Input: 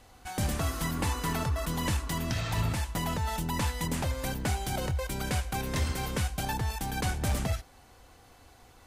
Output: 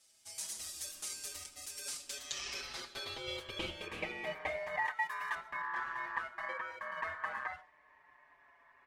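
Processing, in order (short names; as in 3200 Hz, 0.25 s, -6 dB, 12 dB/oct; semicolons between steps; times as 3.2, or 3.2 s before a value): band-pass sweep 7300 Hz -> 360 Hz, 1.85–5.23; ring modulator 1400 Hz; 4.85–5.35 RIAA curve recording; on a send at -18.5 dB: brick-wall FIR band-stop 1000–2900 Hz + reverb RT60 0.20 s, pre-delay 90 ms; on the sum: endless flanger 5.6 ms -0.32 Hz; gain +8.5 dB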